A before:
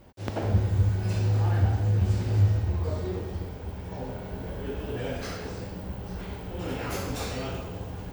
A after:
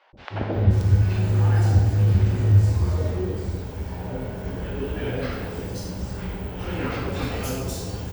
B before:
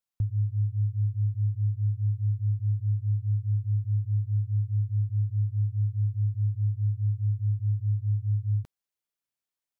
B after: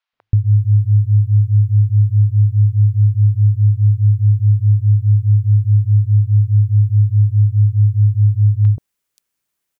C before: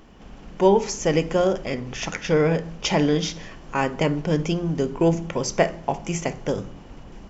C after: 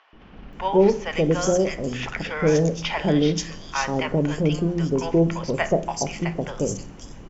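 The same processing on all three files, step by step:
three-band delay without the direct sound mids, lows, highs 130/530 ms, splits 730/4,100 Hz
normalise the peak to −6 dBFS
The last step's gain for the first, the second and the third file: +5.5, +14.5, +1.5 decibels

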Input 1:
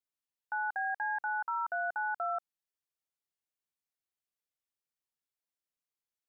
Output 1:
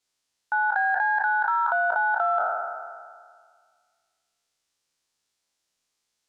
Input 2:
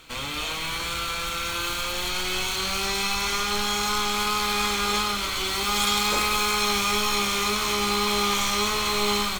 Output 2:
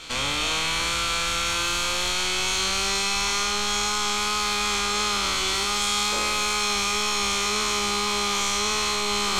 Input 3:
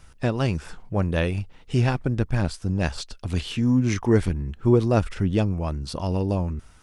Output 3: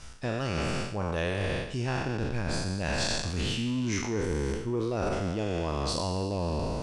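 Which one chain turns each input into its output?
peak hold with a decay on every bin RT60 1.82 s
in parallel at −6.5 dB: soft clipping −21 dBFS
on the sum: dynamic equaliser 4,300 Hz, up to −4 dB, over −38 dBFS, Q 1.5
reversed playback
downward compressor 12 to 1, threshold −25 dBFS
reversed playback
low-pass filter 5,900 Hz 12 dB per octave
bass and treble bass −2 dB, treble +10 dB
normalise the peak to −12 dBFS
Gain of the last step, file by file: +7.5, +2.5, −0.5 decibels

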